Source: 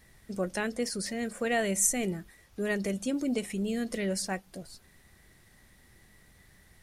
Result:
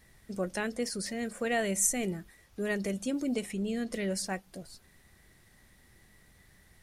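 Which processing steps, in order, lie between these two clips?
3.51–3.93 high shelf 10000 Hz -9.5 dB; gain -1.5 dB

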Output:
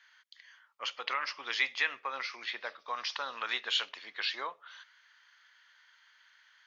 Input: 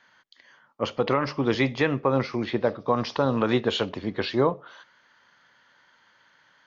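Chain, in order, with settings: Chebyshev high-pass 1900 Hz, order 2

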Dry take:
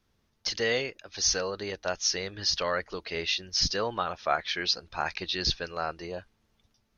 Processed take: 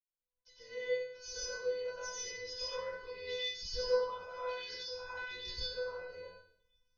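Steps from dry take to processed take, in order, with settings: opening faded in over 1.56 s; low shelf 470 Hz +8 dB; resonator 500 Hz, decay 0.52 s, mix 100%; plate-style reverb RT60 0.62 s, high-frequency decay 0.7×, pre-delay 85 ms, DRR -7 dB

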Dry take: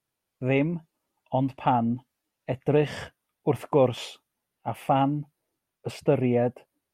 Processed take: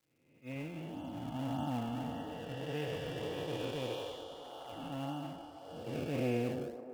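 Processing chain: time blur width 1.01 s; expander -29 dBFS; weighting filter D; spectral noise reduction 20 dB; low shelf 350 Hz +5.5 dB; notch comb 200 Hz; in parallel at -8.5 dB: decimation with a swept rate 26×, swing 160% 1.7 Hz; on the sum: crackle 320/s -65 dBFS; on a send: band-limited delay 0.32 s, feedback 62%, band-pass 620 Hz, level -10 dB; on the sum: gain -1.5 dB

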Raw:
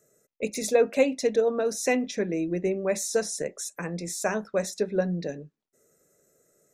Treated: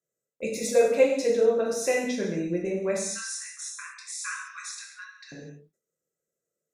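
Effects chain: 2.98–5.32 brick-wall FIR band-pass 1000–11000 Hz; non-linear reverb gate 0.27 s falling, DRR -3 dB; gate with hold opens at -44 dBFS; gain -5 dB

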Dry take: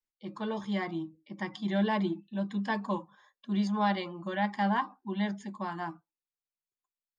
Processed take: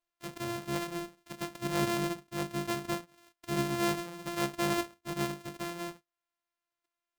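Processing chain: sample sorter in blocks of 128 samples; mismatched tape noise reduction encoder only; gain -2.5 dB

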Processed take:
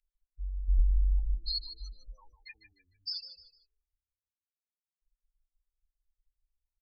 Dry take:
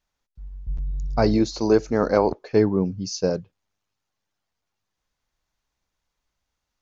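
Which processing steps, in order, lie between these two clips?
CVSD 32 kbps; in parallel at -11 dB: soft clip -21 dBFS, distortion -8 dB; on the sum: low-pass opened by the level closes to 1200 Hz, open at -19.5 dBFS; loudest bins only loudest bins 8; inverse Chebyshev band-stop 110–700 Hz, stop band 60 dB; on a send: frequency-shifting echo 0.151 s, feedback 33%, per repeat -33 Hz, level -11.5 dB; on the sum: gain +9 dB

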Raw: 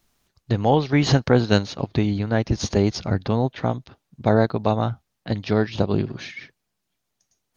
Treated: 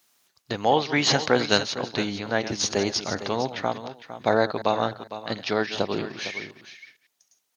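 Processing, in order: reverse delay 0.105 s, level -13 dB; HPF 420 Hz 6 dB/oct; tilt +1.5 dB/oct; echo 0.457 s -12.5 dB; gain +1.5 dB

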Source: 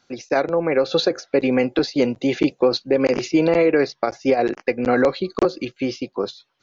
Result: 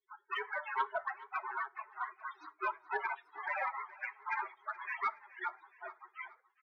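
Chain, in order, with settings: median filter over 25 samples; steep high-pass 510 Hz 72 dB/oct; spectral gate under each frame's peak -25 dB weak; in parallel at -2 dB: compressor, threshold -47 dBFS, peak gain reduction 14.5 dB; on the sum: band-pass 800 Hz, Q 0.54; loudest bins only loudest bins 8; sine folder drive 5 dB, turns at -26.5 dBFS; feedback echo 0.421 s, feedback 52%, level -19 dB; on a send at -17 dB: reverb RT60 0.40 s, pre-delay 5 ms; on the sum: gain +2.5 dB

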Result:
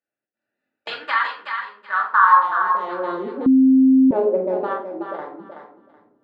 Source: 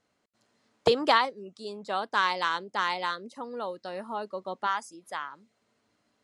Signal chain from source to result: Wiener smoothing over 41 samples; 2.33–2.86 spectral repair 610–1900 Hz; 0.9–2.36 band shelf 1300 Hz +14.5 dB 1.1 oct; AGC gain up to 16 dB; limiter -9 dBFS, peak gain reduction 8.5 dB; 4.73–5.19 compressor, threshold -28 dBFS, peak gain reduction 11 dB; band-pass sweep 2200 Hz -> 420 Hz, 1.75–2.93; thinning echo 0.376 s, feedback 22%, high-pass 560 Hz, level -6 dB; shoebox room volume 490 m³, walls furnished, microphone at 2.5 m; 3.46–4.11 bleep 263 Hz -14 dBFS; gain +4.5 dB

